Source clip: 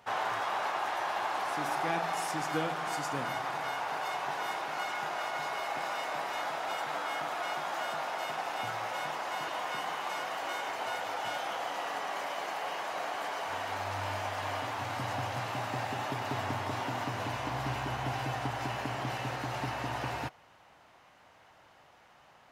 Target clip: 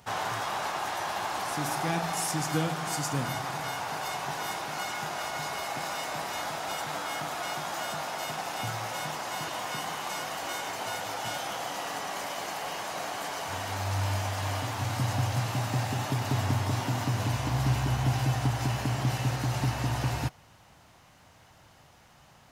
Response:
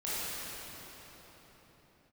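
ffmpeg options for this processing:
-af "bass=f=250:g=13,treble=f=4k:g=11"

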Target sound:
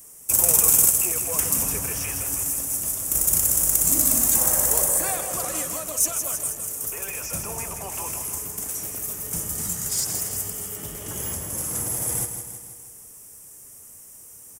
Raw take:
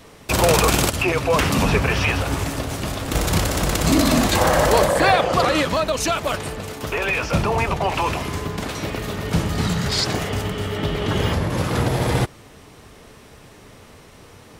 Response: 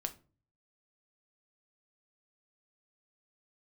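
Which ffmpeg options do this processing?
-af "aecho=1:1:161|322|483|644|805|966|1127:0.376|0.21|0.118|0.066|0.037|0.0207|0.0116,aexciter=amount=11.5:drive=10:freq=6.4k,volume=-16dB"

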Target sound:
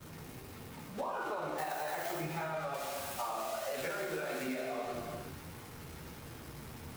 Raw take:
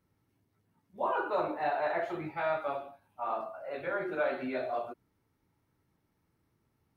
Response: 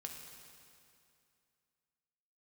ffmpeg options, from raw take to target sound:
-filter_complex "[0:a]aeval=exprs='val(0)+0.5*0.0112*sgn(val(0))':c=same,agate=range=-33dB:threshold=-41dB:ratio=3:detection=peak,asettb=1/sr,asplit=3[a][b][c];[a]atrim=end=2.744[d];[b]atrim=start=2.74:end=4.61,asetpts=PTS-STARTPTS,afade=t=in:d=0.004:c=qsin,afade=t=out:st=1.866:d=0.004:c=qsin,highshelf=f=3.9k:g=11.5[e];[c]atrim=start=4.606[f];[d][e]acrossfade=d=0.004:c1=hsin:c2=qsin[g];[g][f]acrossfade=d=0.004:c1=qsin:c2=hsin,alimiter=level_in=3.5dB:limit=-24dB:level=0:latency=1:release=22,volume=-3.5dB,asettb=1/sr,asplit=3[h][i][j];[h]atrim=end=1.584[k];[i]atrim=start=1.58:end=2.21,asetpts=PTS-STARTPTS,afade=t=in:d=0.004:c=qsin,afade=t=out:st=0.626:d=0.004:c=qsin,aemphasis=mode=production:type=75kf[l];[j]atrim=start=2.206[m];[k][l]acrossfade=d=0.004:c1=hsin:c2=qsin[n];[n][m]acrossfade=d=0.004:c1=qsin:c2=hsin[o];[1:a]atrim=start_sample=2205,afade=t=out:st=0.42:d=0.01,atrim=end_sample=18963[p];[o][p]afir=irnorm=-1:irlink=0,flanger=delay=8.6:depth=6.7:regen=-41:speed=1.6:shape=sinusoidal,acompressor=threshold=-47dB:ratio=6,volume=12dB"

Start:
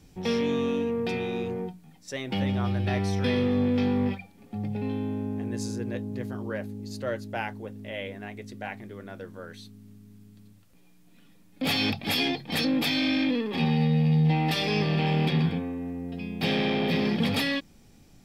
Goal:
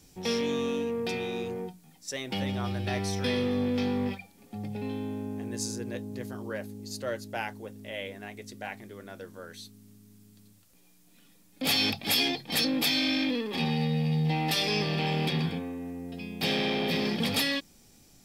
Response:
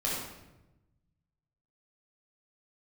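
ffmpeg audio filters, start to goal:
-af "bass=f=250:g=-4,treble=f=4k:g=9,volume=-2dB"

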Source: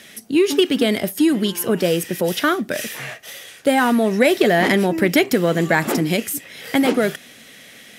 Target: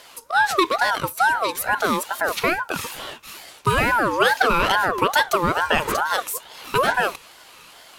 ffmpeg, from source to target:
-af "aeval=exprs='val(0)*sin(2*PI*970*n/s+970*0.3/2.3*sin(2*PI*2.3*n/s))':c=same"

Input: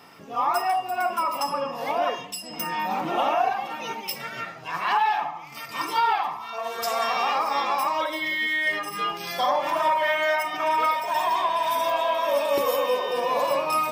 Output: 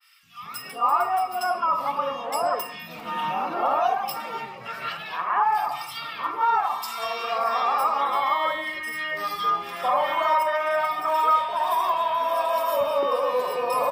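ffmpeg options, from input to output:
-filter_complex "[0:a]equalizer=f=315:t=o:w=0.33:g=-5,equalizer=f=1.25k:t=o:w=0.33:g=7,equalizer=f=6.3k:t=o:w=0.33:g=-8,acrossover=split=200|2000[a][b][c];[a]adelay=230[d];[b]adelay=450[e];[d][e][c]amix=inputs=3:normalize=0,adynamicequalizer=threshold=0.0316:dfrequency=1600:dqfactor=0.7:tfrequency=1600:tqfactor=0.7:attack=5:release=100:ratio=0.375:range=1.5:mode=cutabove:tftype=highshelf"

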